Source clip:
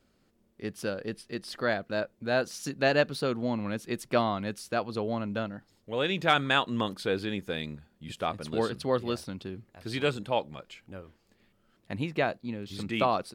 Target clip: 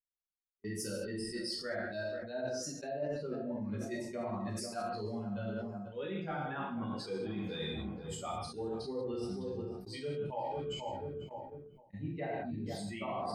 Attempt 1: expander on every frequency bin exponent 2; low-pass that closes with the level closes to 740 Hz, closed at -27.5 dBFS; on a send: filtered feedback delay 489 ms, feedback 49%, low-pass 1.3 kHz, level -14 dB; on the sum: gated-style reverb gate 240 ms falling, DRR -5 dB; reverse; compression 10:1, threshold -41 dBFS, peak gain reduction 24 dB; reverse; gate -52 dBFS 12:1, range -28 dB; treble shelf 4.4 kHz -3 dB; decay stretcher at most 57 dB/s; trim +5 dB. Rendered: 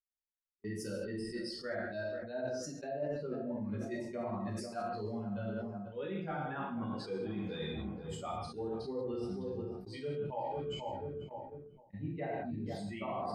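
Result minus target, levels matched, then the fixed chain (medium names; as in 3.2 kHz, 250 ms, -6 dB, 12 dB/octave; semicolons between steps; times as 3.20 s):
8 kHz band -6.5 dB
expander on every frequency bin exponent 2; low-pass that closes with the level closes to 740 Hz, closed at -27.5 dBFS; on a send: filtered feedback delay 489 ms, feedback 49%, low-pass 1.3 kHz, level -14 dB; on the sum: gated-style reverb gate 240 ms falling, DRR -5 dB; reverse; compression 10:1, threshold -41 dBFS, peak gain reduction 24 dB; reverse; gate -52 dBFS 12:1, range -28 dB; treble shelf 4.4 kHz +8 dB; decay stretcher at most 57 dB/s; trim +5 dB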